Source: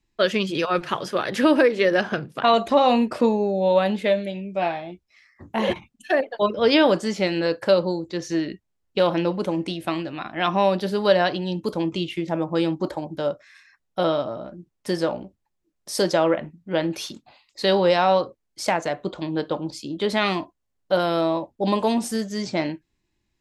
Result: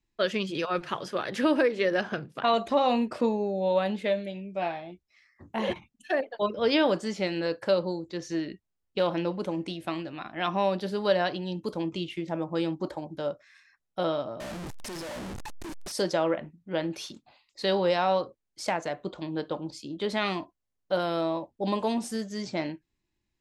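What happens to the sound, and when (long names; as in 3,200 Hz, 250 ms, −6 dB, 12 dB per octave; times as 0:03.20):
0:14.40–0:15.92: sign of each sample alone
whole clip: low-pass filter 11,000 Hz; level −6.5 dB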